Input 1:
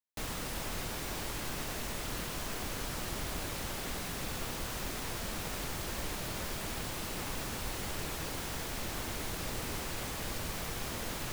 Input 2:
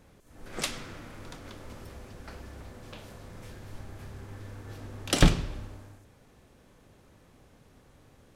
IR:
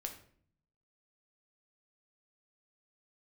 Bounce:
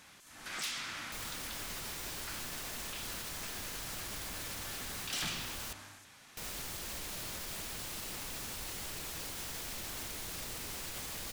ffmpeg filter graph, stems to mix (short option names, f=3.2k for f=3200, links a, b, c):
-filter_complex "[0:a]adelay=950,volume=-5.5dB,asplit=3[a][b][c];[a]atrim=end=5.73,asetpts=PTS-STARTPTS,afade=t=out:st=5.726:d=0.004:c=hsin[d];[b]atrim=start=5.73:end=6.37,asetpts=PTS-STARTPTS,volume=0[e];[c]atrim=start=6.37,asetpts=PTS-STARTPTS,afade=t=in:d=0.004:c=hsin[f];[d][e][f]concat=n=3:v=0:a=1[g];[1:a]equalizer=f=470:t=o:w=0.98:g=-12,asplit=2[h][i];[i]highpass=f=720:p=1,volume=27dB,asoftclip=type=tanh:threshold=-5.5dB[j];[h][j]amix=inputs=2:normalize=0,lowpass=f=6k:p=1,volume=-6dB,volume=-15dB[k];[g][k]amix=inputs=2:normalize=0,highshelf=f=2.1k:g=9,asoftclip=type=tanh:threshold=-25dB,alimiter=level_in=9dB:limit=-24dB:level=0:latency=1,volume=-9dB"